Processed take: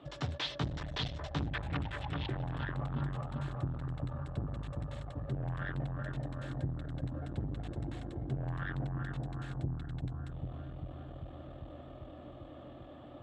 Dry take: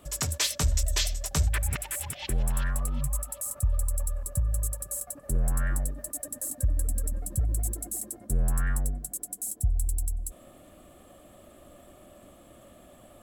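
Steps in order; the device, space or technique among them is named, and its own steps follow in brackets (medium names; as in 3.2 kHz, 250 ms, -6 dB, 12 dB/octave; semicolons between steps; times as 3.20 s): analogue delay pedal into a guitar amplifier (bucket-brigade echo 396 ms, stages 4096, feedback 71%, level -4.5 dB; valve stage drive 28 dB, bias 0.4; cabinet simulation 100–3600 Hz, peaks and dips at 130 Hz +9 dB, 200 Hz -5 dB, 290 Hz +7 dB, 810 Hz +4 dB, 2.3 kHz -4 dB, 3.6 kHz +4 dB)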